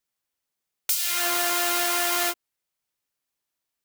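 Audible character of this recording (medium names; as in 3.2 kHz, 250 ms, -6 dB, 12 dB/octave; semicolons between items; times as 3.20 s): noise floor -84 dBFS; spectral tilt +1.0 dB/octave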